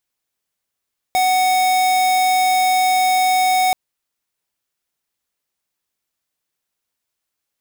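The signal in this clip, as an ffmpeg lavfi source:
ffmpeg -f lavfi -i "aevalsrc='0.168*(2*lt(mod(743*t,1),0.5)-1)':duration=2.58:sample_rate=44100" out.wav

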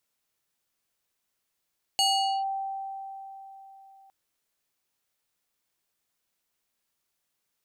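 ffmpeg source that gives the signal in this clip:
ffmpeg -f lavfi -i "aevalsrc='0.106*pow(10,-3*t/3.78)*sin(2*PI*779*t+1.6*clip(1-t/0.45,0,1)*sin(2*PI*4.71*779*t))':duration=2.11:sample_rate=44100" out.wav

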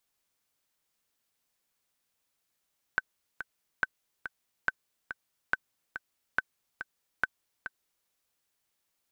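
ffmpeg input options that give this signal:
ffmpeg -f lavfi -i "aevalsrc='pow(10,(-12-11*gte(mod(t,2*60/141),60/141))/20)*sin(2*PI*1530*mod(t,60/141))*exp(-6.91*mod(t,60/141)/0.03)':duration=5.1:sample_rate=44100" out.wav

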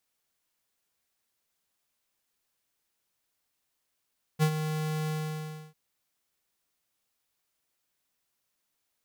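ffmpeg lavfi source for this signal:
ffmpeg -f lavfi -i "aevalsrc='0.0841*(2*lt(mod(155*t,1),0.5)-1)':duration=1.347:sample_rate=44100,afade=type=in:duration=0.036,afade=type=out:start_time=0.036:duration=0.076:silence=0.335,afade=type=out:start_time=0.7:duration=0.647" out.wav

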